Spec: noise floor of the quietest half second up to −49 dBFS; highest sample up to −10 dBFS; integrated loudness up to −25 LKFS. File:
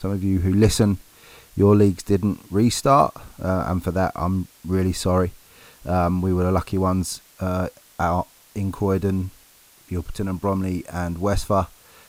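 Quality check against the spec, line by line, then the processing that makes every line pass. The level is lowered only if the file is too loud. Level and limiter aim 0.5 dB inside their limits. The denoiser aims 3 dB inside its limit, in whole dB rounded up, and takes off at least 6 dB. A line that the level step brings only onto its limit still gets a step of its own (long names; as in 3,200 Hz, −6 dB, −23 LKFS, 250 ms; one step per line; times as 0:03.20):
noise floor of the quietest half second −53 dBFS: in spec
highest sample −5.0 dBFS: out of spec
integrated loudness −22.0 LKFS: out of spec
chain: level −3.5 dB
brickwall limiter −10.5 dBFS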